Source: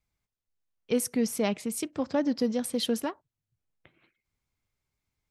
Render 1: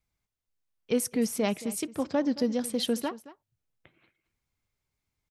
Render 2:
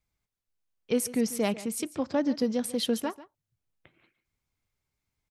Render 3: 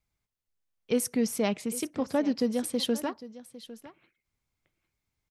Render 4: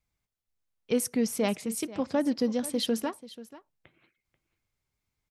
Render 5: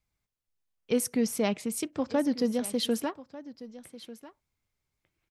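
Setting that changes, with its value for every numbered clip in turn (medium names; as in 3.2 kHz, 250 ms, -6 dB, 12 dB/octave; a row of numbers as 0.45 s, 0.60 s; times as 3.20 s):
delay, time: 222 ms, 143 ms, 804 ms, 487 ms, 1195 ms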